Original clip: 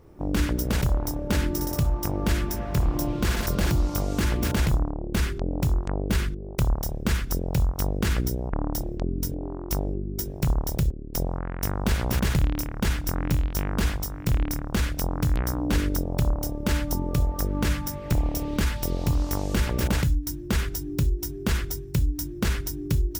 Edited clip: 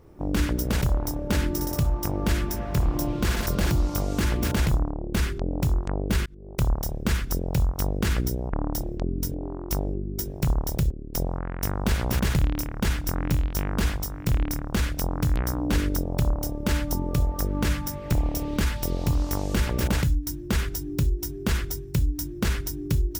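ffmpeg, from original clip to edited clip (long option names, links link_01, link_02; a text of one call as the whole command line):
ffmpeg -i in.wav -filter_complex "[0:a]asplit=2[link_01][link_02];[link_01]atrim=end=6.26,asetpts=PTS-STARTPTS,afade=type=out:start_time=6.256:duration=0.004:curve=hsin[link_03];[link_02]atrim=start=6.26,asetpts=PTS-STARTPTS,afade=type=in:duration=0.37[link_04];[link_03][link_04]concat=n=2:v=0:a=1" out.wav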